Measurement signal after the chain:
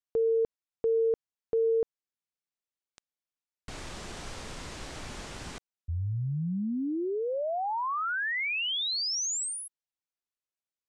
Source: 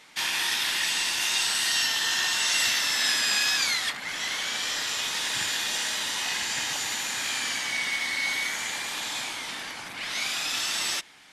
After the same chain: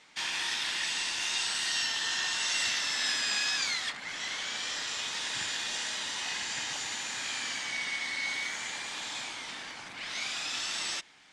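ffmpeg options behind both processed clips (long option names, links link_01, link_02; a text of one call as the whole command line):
ffmpeg -i in.wav -af "lowpass=frequency=8500:width=0.5412,lowpass=frequency=8500:width=1.3066,volume=-5.5dB" out.wav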